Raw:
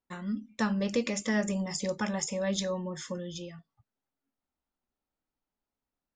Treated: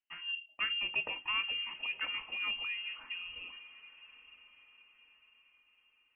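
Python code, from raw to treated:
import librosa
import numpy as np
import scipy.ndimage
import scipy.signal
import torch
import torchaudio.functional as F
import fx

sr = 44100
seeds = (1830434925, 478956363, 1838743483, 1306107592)

y = fx.freq_invert(x, sr, carrier_hz=3000)
y = fx.echo_diffused(y, sr, ms=977, feedback_pct=41, wet_db=-16.0)
y = y * 10.0 ** (-6.0 / 20.0)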